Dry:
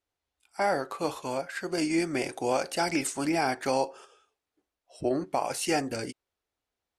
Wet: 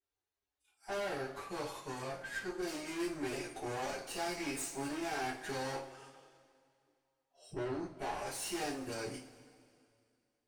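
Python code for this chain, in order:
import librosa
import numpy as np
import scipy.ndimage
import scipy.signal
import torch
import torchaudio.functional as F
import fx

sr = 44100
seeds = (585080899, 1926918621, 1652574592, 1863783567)

y = fx.stretch_vocoder(x, sr, factor=1.5)
y = fx.tube_stage(y, sr, drive_db=33.0, bias=0.7)
y = fx.rev_double_slope(y, sr, seeds[0], early_s=0.29, late_s=2.4, knee_db=-20, drr_db=-4.5)
y = y * 10.0 ** (-8.0 / 20.0)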